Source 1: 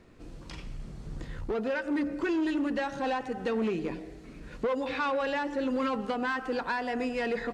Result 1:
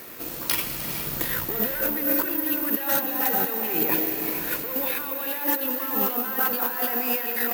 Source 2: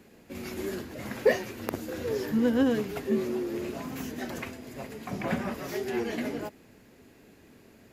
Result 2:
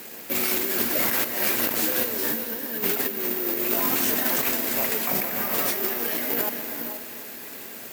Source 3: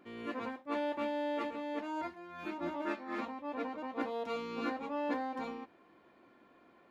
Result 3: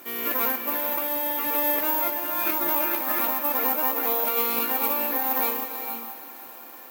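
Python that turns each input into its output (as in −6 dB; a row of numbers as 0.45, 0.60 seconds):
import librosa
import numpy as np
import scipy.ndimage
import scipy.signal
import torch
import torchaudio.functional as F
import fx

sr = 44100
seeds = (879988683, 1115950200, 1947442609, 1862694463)

y = fx.cvsd(x, sr, bps=64000)
y = fx.highpass(y, sr, hz=800.0, slope=6)
y = fx.over_compress(y, sr, threshold_db=-44.0, ratio=-1.0)
y = fx.echo_heads(y, sr, ms=102, heads='second and third', feedback_pct=72, wet_db=-17.0)
y = fx.rev_gated(y, sr, seeds[0], gate_ms=500, shape='rising', drr_db=7.5)
y = (np.kron(y[::3], np.eye(3)[0]) * 3)[:len(y)]
y = y * 10.0 ** (-26 / 20.0) / np.sqrt(np.mean(np.square(y)))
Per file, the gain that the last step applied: +12.0, +11.5, +14.0 decibels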